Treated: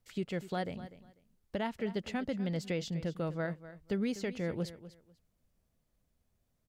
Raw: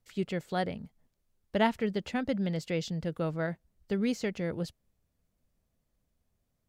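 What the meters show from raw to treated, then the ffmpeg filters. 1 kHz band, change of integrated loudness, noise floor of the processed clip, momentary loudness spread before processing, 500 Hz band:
-7.0 dB, -4.5 dB, -78 dBFS, 9 LU, -4.0 dB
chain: -filter_complex "[0:a]alimiter=limit=0.0631:level=0:latency=1:release=467,asplit=2[s0][s1];[s1]aecho=0:1:247|494:0.178|0.0356[s2];[s0][s2]amix=inputs=2:normalize=0"

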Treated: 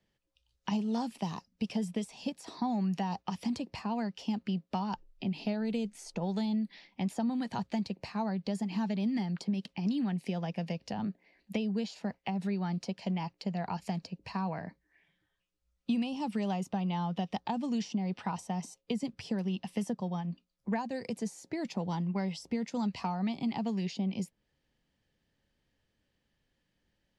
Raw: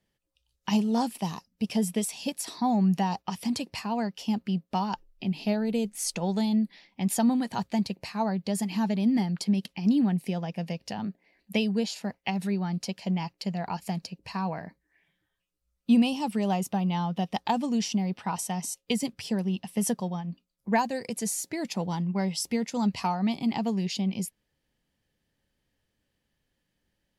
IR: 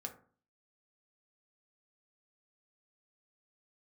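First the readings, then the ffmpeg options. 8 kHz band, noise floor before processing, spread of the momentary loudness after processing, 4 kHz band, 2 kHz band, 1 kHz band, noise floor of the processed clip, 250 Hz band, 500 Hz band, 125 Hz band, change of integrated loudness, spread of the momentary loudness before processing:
-15.5 dB, -80 dBFS, 6 LU, -8.0 dB, -6.5 dB, -6.5 dB, -80 dBFS, -5.5 dB, -5.5 dB, -4.5 dB, -6.0 dB, 9 LU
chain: -filter_complex "[0:a]acrossover=split=220|1200[s0][s1][s2];[s0]acompressor=threshold=0.0158:ratio=4[s3];[s1]acompressor=threshold=0.0178:ratio=4[s4];[s2]acompressor=threshold=0.00562:ratio=4[s5];[s3][s4][s5]amix=inputs=3:normalize=0,lowpass=6600"

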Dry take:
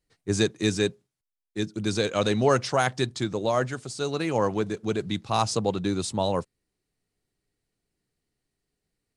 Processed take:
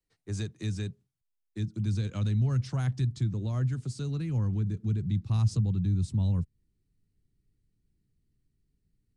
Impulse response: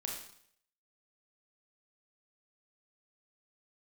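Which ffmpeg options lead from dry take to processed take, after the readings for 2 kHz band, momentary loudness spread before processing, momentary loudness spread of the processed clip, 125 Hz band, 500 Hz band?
under -15 dB, 8 LU, 9 LU, +6.0 dB, -20.0 dB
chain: -filter_complex "[0:a]asubboost=boost=11.5:cutoff=200,acrossover=split=180[s0][s1];[s1]acompressor=threshold=0.0355:ratio=6[s2];[s0][s2]amix=inputs=2:normalize=0,acrossover=split=170|830[s3][s4][s5];[s4]alimiter=level_in=1.12:limit=0.0631:level=0:latency=1,volume=0.891[s6];[s3][s6][s5]amix=inputs=3:normalize=0,volume=0.398"

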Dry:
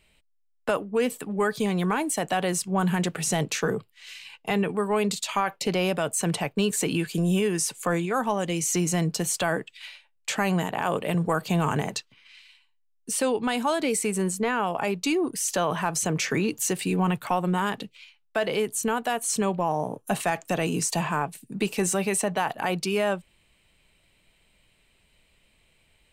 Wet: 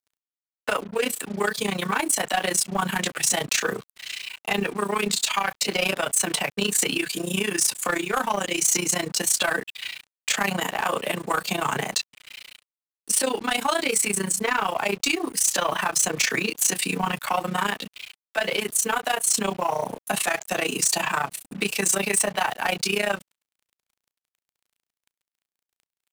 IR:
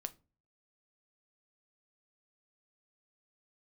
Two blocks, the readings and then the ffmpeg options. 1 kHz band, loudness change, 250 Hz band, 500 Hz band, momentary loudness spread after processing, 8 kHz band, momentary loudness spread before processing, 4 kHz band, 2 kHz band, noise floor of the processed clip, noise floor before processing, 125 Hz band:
+1.5 dB, +2.5 dB, -4.0 dB, -1.5 dB, 8 LU, +6.5 dB, 6 LU, +7.0 dB, +5.5 dB, under -85 dBFS, -67 dBFS, -7.0 dB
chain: -filter_complex "[0:a]asplit=2[s0][s1];[s1]adelay=15,volume=0.75[s2];[s0][s2]amix=inputs=2:normalize=0,tremolo=f=29:d=0.889,asplit=2[s3][s4];[s4]alimiter=limit=0.158:level=0:latency=1:release=107,volume=0.794[s5];[s3][s5]amix=inputs=2:normalize=0,highpass=f=92:w=0.5412,highpass=f=92:w=1.3066,acrossover=split=130|1000[s6][s7][s8];[s6]acompressor=threshold=0.00447:ratio=6[s9];[s9][s7][s8]amix=inputs=3:normalize=0,tiltshelf=f=740:g=-6.5,acrusher=bits=6:mix=0:aa=0.5,asoftclip=type=tanh:threshold=0.2"

